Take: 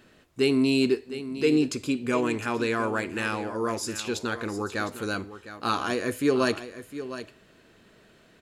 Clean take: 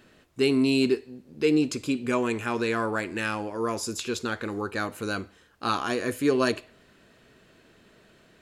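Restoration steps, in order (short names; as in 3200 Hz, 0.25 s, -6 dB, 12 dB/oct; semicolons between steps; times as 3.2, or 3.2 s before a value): inverse comb 0.708 s -12.5 dB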